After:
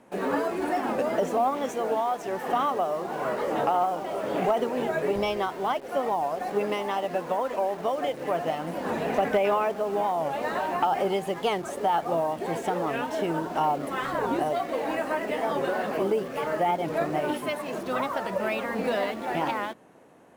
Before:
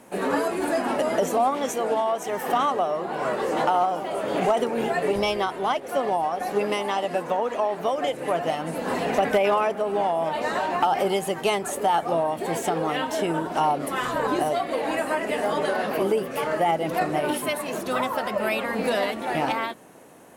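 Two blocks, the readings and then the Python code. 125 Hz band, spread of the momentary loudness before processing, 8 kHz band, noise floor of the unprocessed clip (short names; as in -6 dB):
-2.5 dB, 4 LU, -9.0 dB, -36 dBFS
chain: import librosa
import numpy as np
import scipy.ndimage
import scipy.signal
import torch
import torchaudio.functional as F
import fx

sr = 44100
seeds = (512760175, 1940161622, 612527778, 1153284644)

p1 = fx.lowpass(x, sr, hz=2800.0, slope=6)
p2 = fx.quant_dither(p1, sr, seeds[0], bits=6, dither='none')
p3 = p1 + F.gain(torch.from_numpy(p2), -9.0).numpy()
p4 = fx.record_warp(p3, sr, rpm=45.0, depth_cents=160.0)
y = F.gain(torch.from_numpy(p4), -5.0).numpy()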